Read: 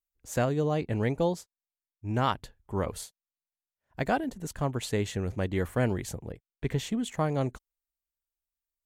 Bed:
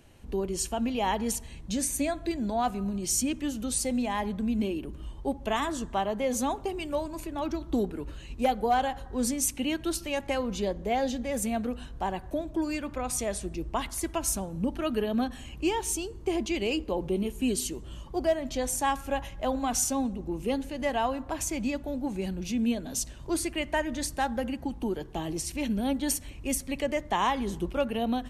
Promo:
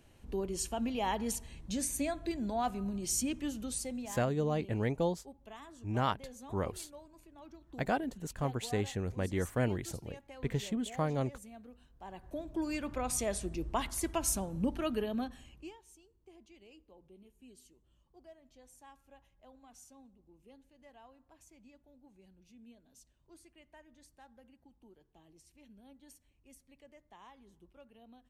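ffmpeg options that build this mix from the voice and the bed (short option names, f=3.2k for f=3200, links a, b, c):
-filter_complex "[0:a]adelay=3800,volume=-4.5dB[a];[1:a]volume=13dB,afade=t=out:st=3.47:d=0.82:silence=0.158489,afade=t=in:st=11.98:d=0.93:silence=0.11885,afade=t=out:st=14.69:d=1.09:silence=0.0473151[b];[a][b]amix=inputs=2:normalize=0"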